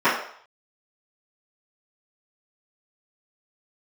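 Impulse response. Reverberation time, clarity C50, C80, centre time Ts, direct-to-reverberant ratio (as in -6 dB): 0.60 s, 4.5 dB, 8.5 dB, 40 ms, -16.5 dB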